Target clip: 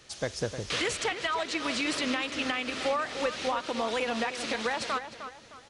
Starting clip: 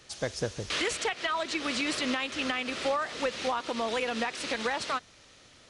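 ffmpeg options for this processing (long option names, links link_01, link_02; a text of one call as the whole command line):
ffmpeg -i in.wav -filter_complex "[0:a]asplit=2[link_01][link_02];[link_02]adelay=307,lowpass=frequency=3000:poles=1,volume=-9.5dB,asplit=2[link_03][link_04];[link_04]adelay=307,lowpass=frequency=3000:poles=1,volume=0.37,asplit=2[link_05][link_06];[link_06]adelay=307,lowpass=frequency=3000:poles=1,volume=0.37,asplit=2[link_07][link_08];[link_08]adelay=307,lowpass=frequency=3000:poles=1,volume=0.37[link_09];[link_01][link_03][link_05][link_07][link_09]amix=inputs=5:normalize=0" out.wav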